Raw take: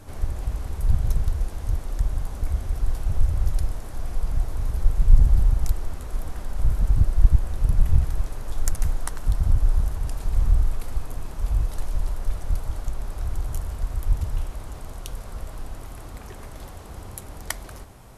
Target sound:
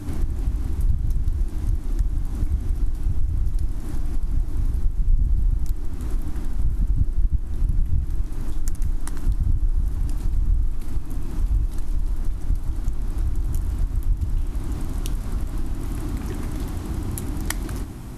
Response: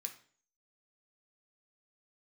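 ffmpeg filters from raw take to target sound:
-af "lowshelf=f=390:t=q:w=3:g=7,acompressor=threshold=0.0447:ratio=3,volume=1.88"

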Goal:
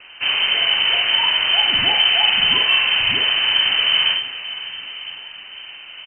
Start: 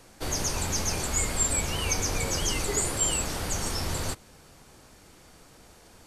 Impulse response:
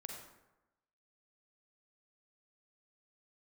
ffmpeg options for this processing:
-filter_complex "[0:a]asplit=2[s0][s1];[s1]adelay=44,volume=0.668[s2];[s0][s2]amix=inputs=2:normalize=0,asplit=2[s3][s4];[s4]adelay=1008,lowpass=f=2300:p=1,volume=0.126,asplit=2[s5][s6];[s6]adelay=1008,lowpass=f=2300:p=1,volume=0.55,asplit=2[s7][s8];[s8]adelay=1008,lowpass=f=2300:p=1,volume=0.55,asplit=2[s9][s10];[s10]adelay=1008,lowpass=f=2300:p=1,volume=0.55,asplit=2[s11][s12];[s12]adelay=1008,lowpass=f=2300:p=1,volume=0.55[s13];[s3][s5][s7][s9][s11][s13]amix=inputs=6:normalize=0,asplit=2[s14][s15];[1:a]atrim=start_sample=2205,lowpass=2600[s16];[s15][s16]afir=irnorm=-1:irlink=0,volume=0.841[s17];[s14][s17]amix=inputs=2:normalize=0,acrusher=bits=8:mix=0:aa=0.000001,asplit=2[s18][s19];[s19]aecho=0:1:566|1132|1698|2264:0.158|0.0745|0.035|0.0165[s20];[s18][s20]amix=inputs=2:normalize=0,lowpass=f=2600:t=q:w=0.5098,lowpass=f=2600:t=q:w=0.6013,lowpass=f=2600:t=q:w=0.9,lowpass=f=2600:t=q:w=2.563,afreqshift=-3100,lowshelf=f=140:g=4.5,volume=2.66"

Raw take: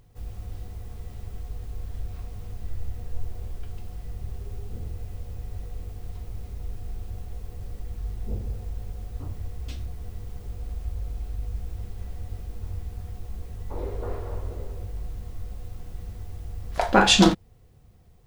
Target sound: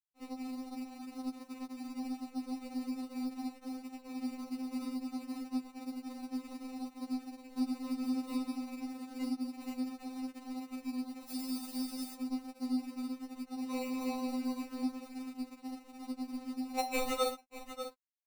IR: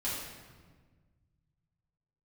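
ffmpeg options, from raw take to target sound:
-filter_complex "[0:a]highpass=f=79:w=0.5412,highpass=f=79:w=1.3066,afreqshift=160,asettb=1/sr,asplit=3[s0][s1][s2];[s0]atrim=end=14.984[s3];[s1]atrim=start=14.98:end=15.5,asetpts=PTS-STARTPTS,afade=t=in:d=0.004:c=qsin,afade=t=out:st=0.516:d=0.004:c=qsin,aecho=1:1:5.1:0.43,atrim=end_sample=22932[s4];[s2]atrim=start=15.496[s5];[s3][s4]acrossfade=d=0.004:c1=hsin:c2=qsin[s6];[s6][s5]acrossfade=d=0.004:c1=qsin:c2=hsin,acrusher=samples=27:mix=1:aa=0.000001,asplit=3[s7][s8][s9];[s7]afade=t=out:st=11.27:d=0.02[s10];[s8]bass=f=250:g=3,treble=f=4000:g=14,afade=t=in:st=11.27:d=0.02,afade=t=out:st=12.14:d=0.02[s11];[s9]afade=t=in:st=12.14:d=0.02[s12];[s10][s11][s12]amix=inputs=3:normalize=0,asplit=2[s13][s14];[s14]aecho=0:1:593:0.0841[s15];[s13][s15]amix=inputs=2:normalize=0,asettb=1/sr,asplit=3[s16][s17][s18];[s16]atrim=end=7.584[s19];[s17]atrim=start=7.58:end=8.21,asetpts=PTS-STARTPTS,afade=t=in:d=0.004:c=qsin,afade=t=out:st=0.626:d=0.004:c=qsin,acontrast=24[s20];[s18]atrim=start=8.206[s21];[s19][s20]acrossfade=d=0.004:c1=hsin:c2=qsin[s22];[s22][s21]acrossfade=d=0.004:c1=qsin:c2=hsin,aeval=exprs='sgn(val(0))*max(abs(val(0))-0.00891,0)':c=same,acompressor=threshold=0.00447:ratio=2.5,afftfilt=real='re*3.46*eq(mod(b,12),0)':imag='im*3.46*eq(mod(b,12),0)':win_size=2048:overlap=0.75,volume=2.82"

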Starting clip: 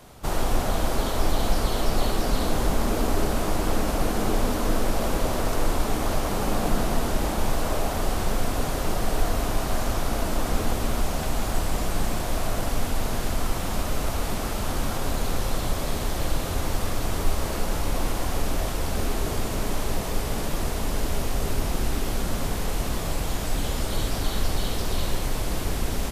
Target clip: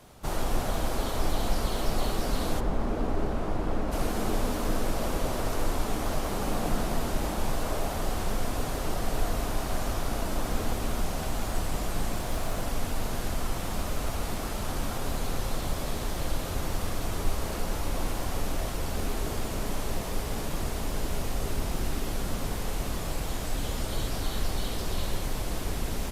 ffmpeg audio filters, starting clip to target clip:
-filter_complex "[0:a]asplit=3[s0][s1][s2];[s0]afade=t=out:st=2.59:d=0.02[s3];[s1]lowpass=f=1400:p=1,afade=t=in:st=2.59:d=0.02,afade=t=out:st=3.91:d=0.02[s4];[s2]afade=t=in:st=3.91:d=0.02[s5];[s3][s4][s5]amix=inputs=3:normalize=0,asettb=1/sr,asplit=3[s6][s7][s8];[s6]atrim=end=12.174[s9];[s7]atrim=start=12.17:end=12.64,asetpts=PTS-STARTPTS,afade=t=in:d=0.004:c=qsin,afade=t=out:st=0.466:d=0.004:c=qsin,acrusher=bits=8:mode=log:mix=0:aa=0.000001[s10];[s8]atrim=start=12.636[s11];[s9][s10]acrossfade=d=0.004:c1=hsin:c2=qsin[s12];[s12][s11]acrossfade=d=0.004:c1=qsin:c2=hsin,volume=0.596" -ar 48000 -c:a libopus -b:a 48k

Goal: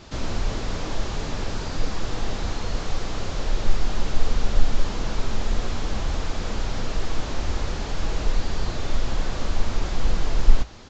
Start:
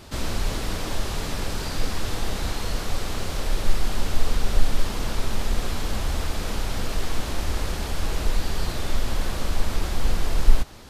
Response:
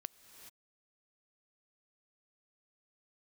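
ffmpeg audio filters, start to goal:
-filter_complex "[0:a]flanger=delay=6:depth=2.8:regen=-72:speed=0.99:shape=sinusoidal,acrossover=split=1400[s0][s1];[s1]aeval=exprs='0.0112*(abs(mod(val(0)/0.0112+3,4)-2)-1)':c=same[s2];[s0][s2]amix=inputs=2:normalize=0,aresample=16000,aresample=44100,volume=1.68"

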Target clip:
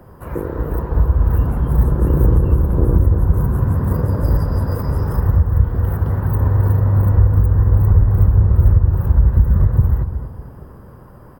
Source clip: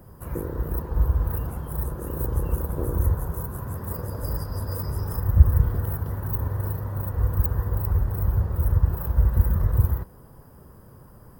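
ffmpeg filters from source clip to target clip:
-filter_complex "[0:a]bass=f=250:g=-5,treble=f=4000:g=-12,acrossover=split=280[s0][s1];[s0]dynaudnorm=f=280:g=9:m=4.47[s2];[s2][s1]amix=inputs=2:normalize=0,alimiter=limit=0.237:level=0:latency=1:release=428,asplit=2[s3][s4];[s4]adelay=231,lowpass=f=1600:p=1,volume=0.447,asplit=2[s5][s6];[s6]adelay=231,lowpass=f=1600:p=1,volume=0.31,asplit=2[s7][s8];[s8]adelay=231,lowpass=f=1600:p=1,volume=0.31,asplit=2[s9][s10];[s10]adelay=231,lowpass=f=1600:p=1,volume=0.31[s11];[s3][s5][s7][s9][s11]amix=inputs=5:normalize=0,volume=2.66"

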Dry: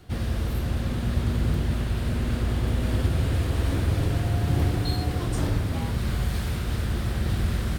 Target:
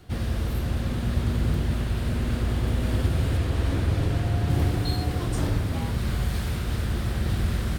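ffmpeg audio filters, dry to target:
-filter_complex "[0:a]asettb=1/sr,asplit=3[s0][s1][s2];[s0]atrim=end=3.374[s3];[s1]atrim=start=3.37:end=4.5,asetpts=PTS-STARTPTS,afade=t=in:d=0.004:c=qsin,afade=t=out:st=1.126:d=0.004:c=qsin,highshelf=f=8600:g=-6.5[s4];[s2]atrim=start=4.496[s5];[s3][s4]acrossfade=d=0.004:c1=hsin:c2=qsin[s6];[s6][s5]acrossfade=d=0.004:c1=qsin:c2=hsin"

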